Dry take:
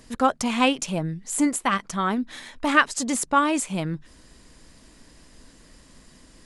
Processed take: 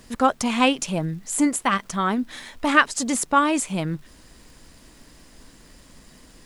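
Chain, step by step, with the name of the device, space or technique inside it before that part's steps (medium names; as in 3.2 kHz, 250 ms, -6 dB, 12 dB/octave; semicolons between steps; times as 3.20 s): vinyl LP (crackle -44 dBFS; pink noise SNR 35 dB); trim +1.5 dB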